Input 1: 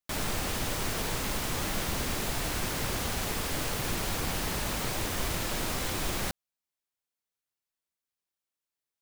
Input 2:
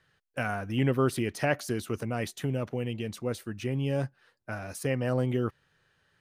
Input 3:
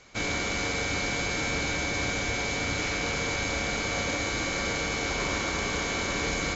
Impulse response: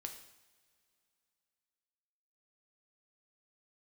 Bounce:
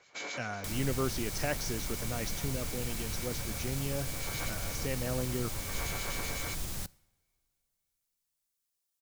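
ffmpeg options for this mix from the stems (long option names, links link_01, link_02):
-filter_complex "[0:a]acrossover=split=180[link_01][link_02];[link_02]acompressor=threshold=-53dB:ratio=2[link_03];[link_01][link_03]amix=inputs=2:normalize=0,bass=frequency=250:gain=-1,treble=frequency=4000:gain=10,adelay=550,volume=-3dB,asplit=2[link_04][link_05];[link_05]volume=-11.5dB[link_06];[1:a]lowpass=frequency=5800:width_type=q:width=4.9,volume=-7dB,asplit=2[link_07][link_08];[2:a]highpass=410,alimiter=limit=-22.5dB:level=0:latency=1:release=127,acrossover=split=2100[link_09][link_10];[link_09]aeval=exprs='val(0)*(1-0.7/2+0.7/2*cos(2*PI*7.9*n/s))':channel_layout=same[link_11];[link_10]aeval=exprs='val(0)*(1-0.7/2-0.7/2*cos(2*PI*7.9*n/s))':channel_layout=same[link_12];[link_11][link_12]amix=inputs=2:normalize=0,volume=-5.5dB,asplit=2[link_13][link_14];[link_14]volume=-10dB[link_15];[link_08]apad=whole_len=289210[link_16];[link_13][link_16]sidechaincompress=threshold=-49dB:ratio=8:attack=16:release=267[link_17];[3:a]atrim=start_sample=2205[link_18];[link_06][link_15]amix=inputs=2:normalize=0[link_19];[link_19][link_18]afir=irnorm=-1:irlink=0[link_20];[link_04][link_07][link_17][link_20]amix=inputs=4:normalize=0"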